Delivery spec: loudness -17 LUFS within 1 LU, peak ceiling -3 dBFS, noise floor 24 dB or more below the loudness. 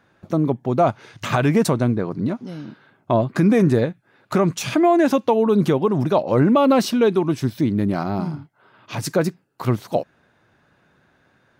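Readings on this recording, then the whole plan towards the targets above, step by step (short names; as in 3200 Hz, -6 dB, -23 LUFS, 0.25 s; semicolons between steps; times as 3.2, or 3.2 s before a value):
loudness -20.0 LUFS; peak -7.5 dBFS; loudness target -17.0 LUFS
-> gain +3 dB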